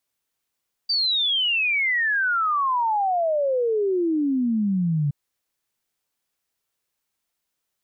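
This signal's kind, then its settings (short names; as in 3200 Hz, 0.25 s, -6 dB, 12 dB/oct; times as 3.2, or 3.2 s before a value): log sweep 4700 Hz -> 140 Hz 4.22 s -19 dBFS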